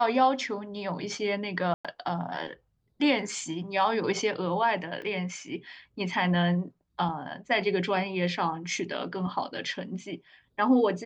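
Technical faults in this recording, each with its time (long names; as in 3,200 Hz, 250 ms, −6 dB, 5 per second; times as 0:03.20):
0:01.74–0:01.85: drop-out 106 ms
0:05.02: drop-out 2.8 ms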